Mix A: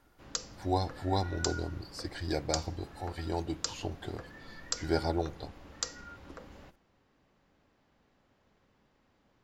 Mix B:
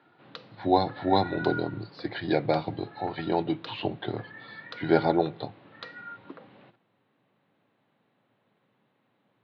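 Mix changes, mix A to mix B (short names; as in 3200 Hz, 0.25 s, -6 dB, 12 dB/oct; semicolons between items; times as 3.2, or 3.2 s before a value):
speech +9.0 dB; master: add Chebyshev band-pass 110–4000 Hz, order 5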